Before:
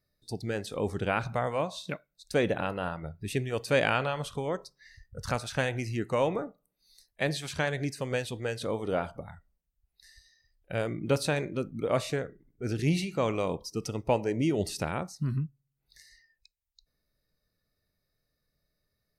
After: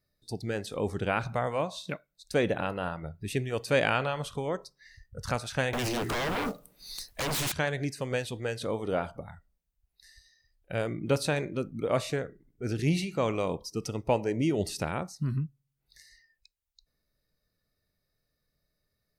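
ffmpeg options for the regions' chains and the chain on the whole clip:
ffmpeg -i in.wav -filter_complex "[0:a]asettb=1/sr,asplit=3[link_01][link_02][link_03];[link_01]atrim=end=5.734[link_04];[link_02]atrim=start=5.73:end=7.52,asetpts=PTS-STARTPTS,afade=type=in:duration=0.004:curve=qsin,afade=type=out:start_time=1.786:duration=0.004:curve=qsin,acompressor=threshold=-36dB:ratio=16:attack=3.2:release=140:knee=1:detection=peak,aeval=exprs='0.0422*sin(PI/2*6.31*val(0)/0.0422)':channel_layout=same,acrusher=bits=4:mode=log:mix=0:aa=0.000001[link_05];[link_03]atrim=start=7.516[link_06];[link_04][link_05]acrossfade=duration=0.004:curve1=hsin:curve2=qsin[link_07];[link_07][link_06]acrossfade=duration=0.004:curve1=qsin:curve2=hsin" out.wav

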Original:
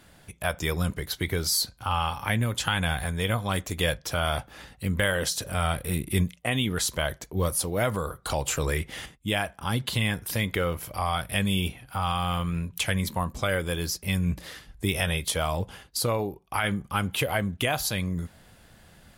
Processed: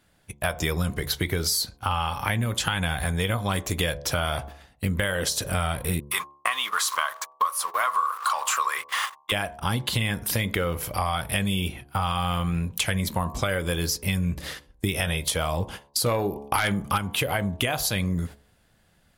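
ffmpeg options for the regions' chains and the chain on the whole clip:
ffmpeg -i in.wav -filter_complex "[0:a]asettb=1/sr,asplit=3[link_01][link_02][link_03];[link_01]atrim=end=6.004[link_04];[link_02]atrim=start=6:end=9.32,asetpts=PTS-STARTPTS,afade=type=in:duration=0.004:curve=qsin,afade=type=out:start_time=3.316:duration=0.004:curve=qsin,aeval=exprs='val(0)+0.5*0.0141*sgn(val(0))':channel_layout=same,highpass=frequency=1100:width_type=q:width=12,agate=range=-52dB:threshold=-36dB:ratio=16:release=100:detection=peak[link_05];[link_03]atrim=start=9.316[link_06];[link_04][link_05]acrossfade=duration=0.004:curve1=hsin:curve2=qsin[link_07];[link_07][link_06]acrossfade=duration=0.004:curve1=qsin:curve2=hsin,asettb=1/sr,asplit=3[link_08][link_09][link_10];[link_08]atrim=end=16.064[link_11];[link_09]atrim=start=16.06:end=16.98,asetpts=PTS-STARTPTS,afade=type=in:duration=0.004:curve=qsin,afade=type=out:start_time=0.916:duration=0.004:curve=qsin,lowshelf=frequency=380:gain=-3.5,aeval=exprs='0.282*sin(PI/2*2*val(0)/0.282)':channel_layout=same[link_12];[link_10]atrim=start=16.976[link_13];[link_11][link_12]acrossfade=duration=0.004:curve1=hsin:curve2=qsin[link_14];[link_14][link_13]acrossfade=duration=0.004:curve1=qsin:curve2=hsin,agate=range=-16dB:threshold=-41dB:ratio=16:detection=peak,bandreject=frequency=71.24:width_type=h:width=4,bandreject=frequency=142.48:width_type=h:width=4,bandreject=frequency=213.72:width_type=h:width=4,bandreject=frequency=284.96:width_type=h:width=4,bandreject=frequency=356.2:width_type=h:width=4,bandreject=frequency=427.44:width_type=h:width=4,bandreject=frequency=498.68:width_type=h:width=4,bandreject=frequency=569.92:width_type=h:width=4,bandreject=frequency=641.16:width_type=h:width=4,bandreject=frequency=712.4:width_type=h:width=4,bandreject=frequency=783.64:width_type=h:width=4,bandreject=frequency=854.88:width_type=h:width=4,bandreject=frequency=926.12:width_type=h:width=4,bandreject=frequency=997.36:width_type=h:width=4,bandreject=frequency=1068.6:width_type=h:width=4,bandreject=frequency=1139.84:width_type=h:width=4,acompressor=threshold=-29dB:ratio=6,volume=7dB" out.wav

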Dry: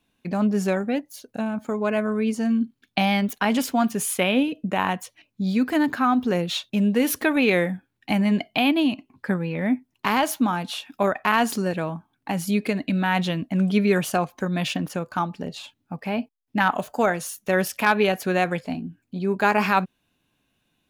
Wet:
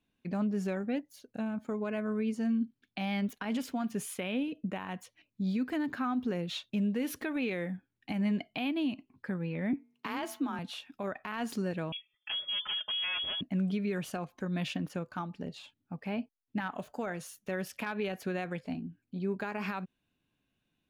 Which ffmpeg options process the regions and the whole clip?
ffmpeg -i in.wav -filter_complex "[0:a]asettb=1/sr,asplit=3[link_01][link_02][link_03];[link_01]atrim=end=9.734[link_04];[link_02]atrim=start=9.73:end=10.59,asetpts=PTS-STARTPTS,afade=type=in:duration=0.004:curve=qsin,afade=type=out:start_time=0.856:duration=0.004:curve=qsin,highpass=41,bandreject=frequency=211.4:width_type=h:width=4,bandreject=frequency=422.8:width_type=h:width=4,bandreject=frequency=634.2:width_type=h:width=4,bandreject=frequency=845.6:width_type=h:width=4,bandreject=frequency=1057:width_type=h:width=4,bandreject=frequency=1268.4:width_type=h:width=4,bandreject=frequency=1479.8:width_type=h:width=4,bandreject=frequency=1691.2:width_type=h:width=4,bandreject=frequency=1902.6:width_type=h:width=4,bandreject=frequency=2114:width_type=h:width=4,bandreject=frequency=2325.4:width_type=h:width=4,bandreject=frequency=2536.8:width_type=h:width=4,bandreject=frequency=2748.2:width_type=h:width=4,bandreject=frequency=2959.6:width_type=h:width=4,afreqshift=29[link_05];[link_03]atrim=start=10.586[link_06];[link_04][link_05]acrossfade=duration=0.004:curve1=hsin:curve2=qsin[link_07];[link_07][link_06]acrossfade=duration=0.004:curve1=qsin:curve2=hsin,asettb=1/sr,asplit=3[link_08][link_09][link_10];[link_08]atrim=end=11.924[link_11];[link_09]atrim=start=11.92:end=13.41,asetpts=PTS-STARTPTS,afade=type=in:duration=0.004:curve=qsin,afade=type=out:start_time=1.486:duration=0.004:curve=qsin,aecho=1:1:4.5:0.93,atrim=end_sample=65709,asoftclip=type=hard:threshold=-21.5dB,lowpass=frequency=3000:width_type=q:width=0.5098,lowpass=frequency=3000:width_type=q:width=0.6013,lowpass=frequency=3000:width_type=q:width=0.9,lowpass=frequency=3000:width_type=q:width=2.563,afreqshift=-3500[link_12];[link_10]atrim=start=13.406[link_13];[link_11][link_12]acrossfade=duration=0.004:curve1=hsin:curve2=qsin[link_14];[link_14][link_13]acrossfade=duration=0.004:curve1=qsin:curve2=hsin,highshelf=frequency=4600:gain=-9.5,alimiter=limit=-16.5dB:level=0:latency=1:release=127,equalizer=frequency=840:width_type=o:width=1.5:gain=-4.5,volume=-7dB" out.wav

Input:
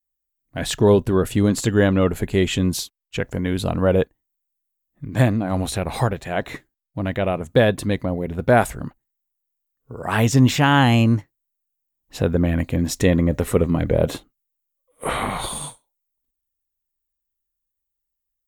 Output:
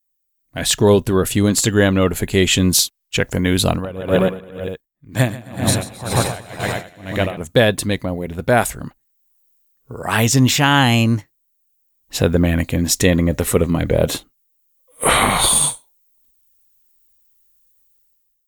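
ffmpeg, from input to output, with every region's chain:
ffmpeg -i in.wav -filter_complex "[0:a]asettb=1/sr,asplit=3[link_01][link_02][link_03];[link_01]atrim=end=3.704[link_04];[link_02]atrim=start=3.7:end=7.37,asetpts=PTS-STARTPTS,afade=type=in:duration=0.004:curve=qsin,afade=type=out:start_time=3.666:duration=0.004:curve=qsin,aecho=1:1:140|266|379.4|481.5|573.3|656|730.4:0.794|0.631|0.501|0.398|0.316|0.251|0.2,atrim=end_sample=161847,aeval=exprs='val(0)*pow(10,-22*(0.5-0.5*cos(2*PI*2*n/s))/20)':channel_layout=same[link_05];[link_03]atrim=start=7.366[link_06];[link_04][link_05]acrossfade=duration=0.004:curve1=hsin:curve2=qsin[link_07];[link_07][link_06]acrossfade=duration=0.004:curve1=qsin:curve2=hsin,highshelf=frequency=2500:gain=10,dynaudnorm=framelen=160:gausssize=7:maxgain=13dB,volume=-1dB" out.wav

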